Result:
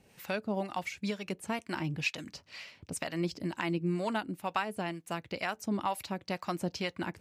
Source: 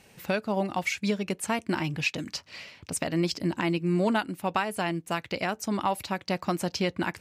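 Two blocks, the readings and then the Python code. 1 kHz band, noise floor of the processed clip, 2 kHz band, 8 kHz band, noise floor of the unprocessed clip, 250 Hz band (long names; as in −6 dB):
−5.5 dB, −66 dBFS, −5.5 dB, −8.5 dB, −59 dBFS, −6.5 dB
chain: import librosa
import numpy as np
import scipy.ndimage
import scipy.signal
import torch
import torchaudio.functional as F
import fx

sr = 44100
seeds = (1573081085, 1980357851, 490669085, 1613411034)

y = fx.harmonic_tremolo(x, sr, hz=2.1, depth_pct=70, crossover_hz=650.0)
y = F.gain(torch.from_numpy(y), -2.5).numpy()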